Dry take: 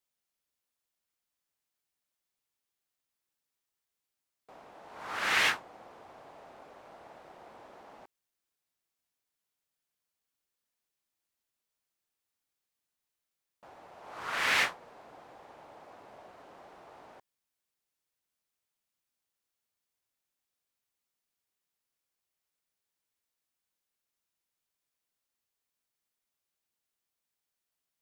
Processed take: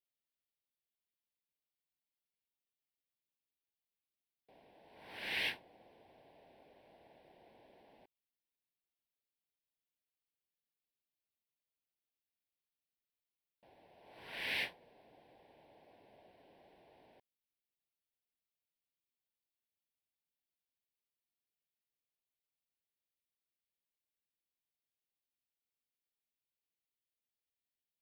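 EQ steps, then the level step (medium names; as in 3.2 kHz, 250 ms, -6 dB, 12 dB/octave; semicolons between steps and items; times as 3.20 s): static phaser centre 3 kHz, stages 4; -7.5 dB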